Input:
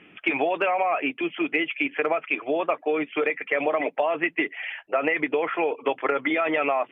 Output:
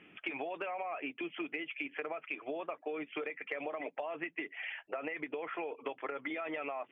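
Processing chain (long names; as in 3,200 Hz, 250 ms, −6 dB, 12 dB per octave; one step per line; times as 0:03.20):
downward compressor 6 to 1, threshold −29 dBFS, peak gain reduction 10.5 dB
level −7 dB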